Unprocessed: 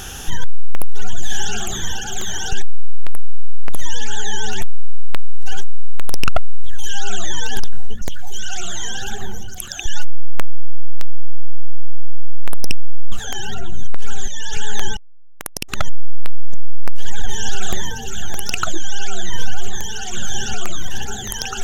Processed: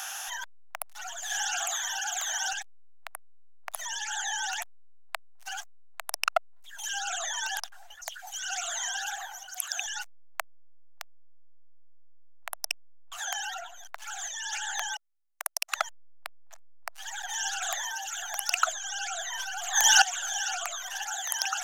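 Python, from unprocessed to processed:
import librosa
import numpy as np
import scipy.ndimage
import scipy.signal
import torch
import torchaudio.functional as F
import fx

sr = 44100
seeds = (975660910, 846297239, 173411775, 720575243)

y = fx.env_flatten(x, sr, amount_pct=100, at=(19.39, 20.02))
y = scipy.signal.sosfilt(scipy.signal.ellip(4, 1.0, 40, 660.0, 'highpass', fs=sr, output='sos'), y)
y = fx.peak_eq(y, sr, hz=3300.0, db=-4.5, octaves=0.55)
y = F.gain(torch.from_numpy(y), -1.5).numpy()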